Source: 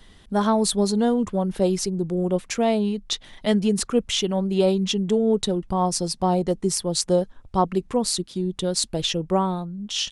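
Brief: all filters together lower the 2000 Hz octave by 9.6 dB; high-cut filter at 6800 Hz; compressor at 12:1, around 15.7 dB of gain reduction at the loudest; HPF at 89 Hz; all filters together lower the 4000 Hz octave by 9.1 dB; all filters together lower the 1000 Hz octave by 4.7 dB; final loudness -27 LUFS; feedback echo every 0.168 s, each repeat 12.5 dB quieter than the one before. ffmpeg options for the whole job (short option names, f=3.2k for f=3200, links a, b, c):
-af "highpass=89,lowpass=6.8k,equalizer=f=1k:t=o:g=-4.5,equalizer=f=2k:t=o:g=-9,equalizer=f=4k:t=o:g=-8,acompressor=threshold=-32dB:ratio=12,aecho=1:1:168|336|504:0.237|0.0569|0.0137,volume=9.5dB"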